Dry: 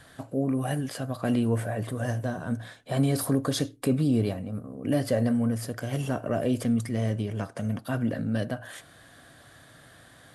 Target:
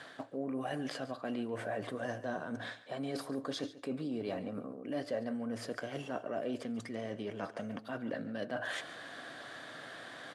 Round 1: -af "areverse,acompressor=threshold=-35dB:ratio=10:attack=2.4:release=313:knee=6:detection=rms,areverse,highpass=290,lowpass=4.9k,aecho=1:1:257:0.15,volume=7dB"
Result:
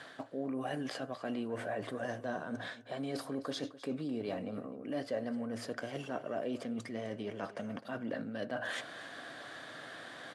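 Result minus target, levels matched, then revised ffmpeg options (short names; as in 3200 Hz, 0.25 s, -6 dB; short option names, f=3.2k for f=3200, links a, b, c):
echo 0.116 s late
-af "areverse,acompressor=threshold=-35dB:ratio=10:attack=2.4:release=313:knee=6:detection=rms,areverse,highpass=290,lowpass=4.9k,aecho=1:1:141:0.15,volume=7dB"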